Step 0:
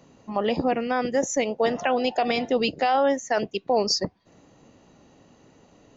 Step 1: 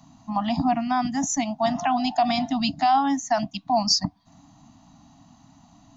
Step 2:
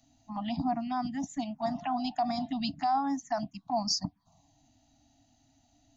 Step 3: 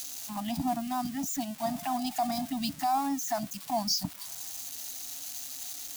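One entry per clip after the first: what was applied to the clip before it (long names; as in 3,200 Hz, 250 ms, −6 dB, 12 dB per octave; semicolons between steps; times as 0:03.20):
Chebyshev band-stop filter 290–670 Hz, order 4; flat-topped bell 2,000 Hz −8 dB 1.3 octaves; level +4.5 dB
phaser swept by the level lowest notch 170 Hz, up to 3,000 Hz, full sweep at −18.5 dBFS; level −7.5 dB
spike at every zero crossing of −29.5 dBFS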